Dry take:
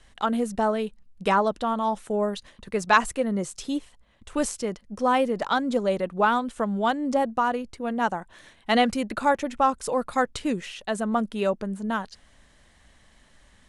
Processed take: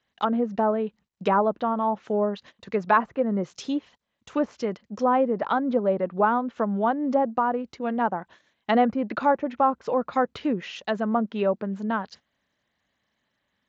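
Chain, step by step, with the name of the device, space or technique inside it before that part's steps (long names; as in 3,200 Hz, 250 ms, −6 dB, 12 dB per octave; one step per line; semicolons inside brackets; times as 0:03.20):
treble cut that deepens with the level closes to 1,200 Hz, closed at −21 dBFS
noise gate −46 dBFS, range −17 dB
high-pass filter 60 Hz 6 dB per octave
Bluetooth headset (high-pass filter 110 Hz 12 dB per octave; downsampling to 16,000 Hz; level +1.5 dB; SBC 64 kbit/s 16,000 Hz)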